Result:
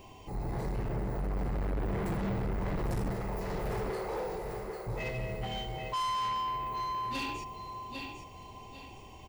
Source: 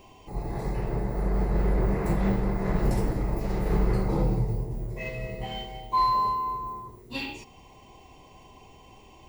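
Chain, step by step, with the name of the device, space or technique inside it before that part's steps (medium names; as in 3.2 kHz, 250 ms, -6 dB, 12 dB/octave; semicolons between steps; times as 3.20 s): 3.10–4.87 s: steep high-pass 370 Hz 72 dB/octave; feedback delay 800 ms, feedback 29%, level -8 dB; open-reel tape (saturation -30.5 dBFS, distortion -7 dB; peaking EQ 93 Hz +3.5 dB 1.01 oct; white noise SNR 43 dB)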